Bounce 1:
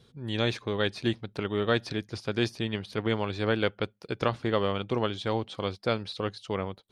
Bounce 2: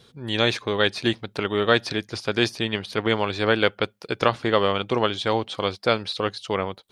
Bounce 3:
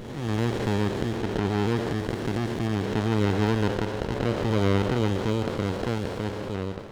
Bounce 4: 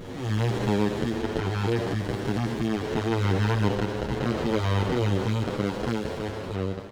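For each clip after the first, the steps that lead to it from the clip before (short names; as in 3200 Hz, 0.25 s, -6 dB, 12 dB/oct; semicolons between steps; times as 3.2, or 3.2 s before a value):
low shelf 320 Hz -8.5 dB; gain +9 dB
time blur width 0.614 s; running maximum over 33 samples; gain +2 dB
endless flanger 8.5 ms +0.61 Hz; gain +3 dB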